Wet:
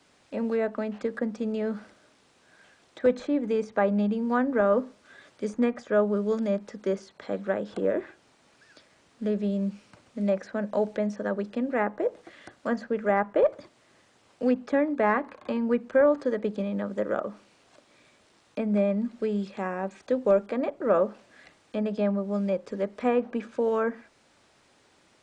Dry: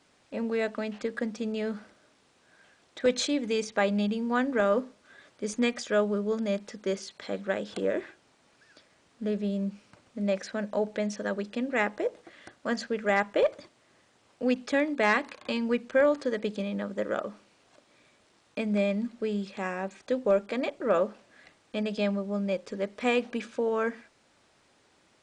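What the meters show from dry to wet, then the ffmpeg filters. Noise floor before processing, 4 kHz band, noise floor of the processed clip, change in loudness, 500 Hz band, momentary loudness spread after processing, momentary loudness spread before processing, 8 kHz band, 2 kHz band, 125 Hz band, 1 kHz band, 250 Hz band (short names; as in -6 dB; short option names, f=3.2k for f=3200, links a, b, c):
-65 dBFS, under -10 dB, -63 dBFS, +2.0 dB, +2.5 dB, 9 LU, 10 LU, under -10 dB, -3.5 dB, n/a, +2.0 dB, +2.5 dB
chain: -filter_complex "[0:a]acrossover=split=130|1300|1400[a][b][c][d];[d]acompressor=threshold=-53dB:ratio=12[e];[a][b][c][e]amix=inputs=4:normalize=0,volume=2.5dB"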